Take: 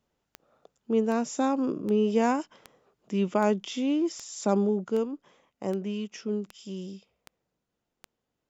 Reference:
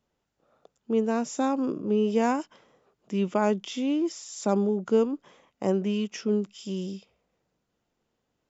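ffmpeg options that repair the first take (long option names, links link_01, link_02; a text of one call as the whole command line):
ffmpeg -i in.wav -af "adeclick=threshold=4,asetnsamples=nb_out_samples=441:pad=0,asendcmd='4.85 volume volume 5dB',volume=0dB" out.wav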